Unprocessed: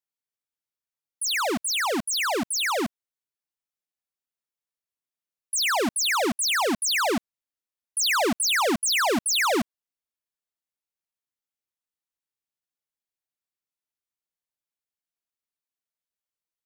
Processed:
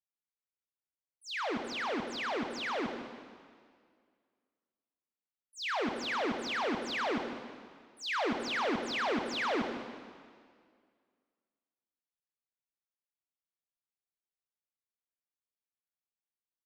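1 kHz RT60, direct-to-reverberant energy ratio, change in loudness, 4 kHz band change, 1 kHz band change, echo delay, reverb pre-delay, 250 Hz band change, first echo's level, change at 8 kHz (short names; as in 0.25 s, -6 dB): 2.0 s, 4.5 dB, -11.0 dB, -13.0 dB, -8.5 dB, 0.152 s, 8 ms, -7.5 dB, -10.5 dB, -25.0 dB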